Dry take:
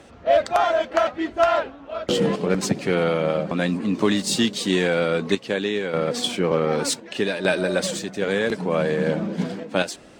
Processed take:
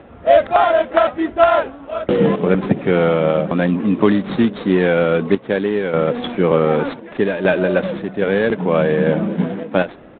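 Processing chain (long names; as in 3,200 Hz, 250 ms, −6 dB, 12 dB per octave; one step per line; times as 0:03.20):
running median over 15 samples
downsampling to 8,000 Hz
level +6.5 dB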